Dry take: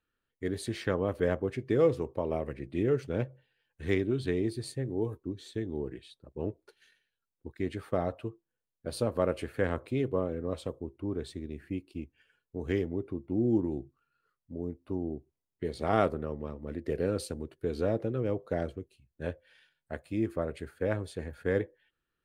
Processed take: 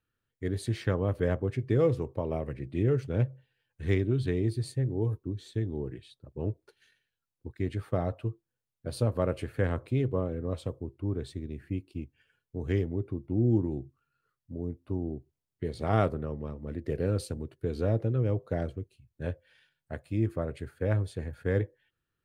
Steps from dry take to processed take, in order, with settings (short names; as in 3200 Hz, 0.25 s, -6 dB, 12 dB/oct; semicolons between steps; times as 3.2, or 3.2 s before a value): bell 110 Hz +11 dB 1 oct; gain -1.5 dB